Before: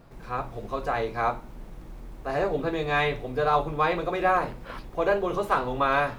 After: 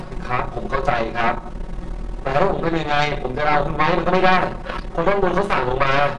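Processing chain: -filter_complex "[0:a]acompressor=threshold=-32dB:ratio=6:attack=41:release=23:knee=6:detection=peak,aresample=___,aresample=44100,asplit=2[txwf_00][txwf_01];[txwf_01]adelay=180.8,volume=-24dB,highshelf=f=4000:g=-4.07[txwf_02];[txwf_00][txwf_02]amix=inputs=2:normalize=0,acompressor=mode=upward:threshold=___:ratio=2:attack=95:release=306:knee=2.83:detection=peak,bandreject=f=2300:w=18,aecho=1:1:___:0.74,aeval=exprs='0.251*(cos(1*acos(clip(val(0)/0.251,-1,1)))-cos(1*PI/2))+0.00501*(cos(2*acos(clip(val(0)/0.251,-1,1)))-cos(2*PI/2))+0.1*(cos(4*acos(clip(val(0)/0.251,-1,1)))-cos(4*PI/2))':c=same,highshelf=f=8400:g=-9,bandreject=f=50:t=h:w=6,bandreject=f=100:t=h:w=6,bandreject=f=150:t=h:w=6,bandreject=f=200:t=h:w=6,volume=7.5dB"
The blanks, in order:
22050, -35dB, 5.4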